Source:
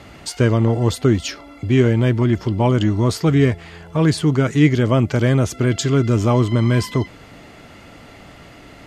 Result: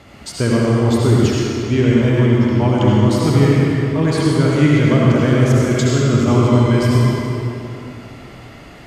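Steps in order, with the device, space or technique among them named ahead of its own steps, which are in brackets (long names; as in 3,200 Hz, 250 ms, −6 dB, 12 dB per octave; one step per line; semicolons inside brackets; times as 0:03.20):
stairwell (convolution reverb RT60 2.7 s, pre-delay 62 ms, DRR −5 dB)
level −3 dB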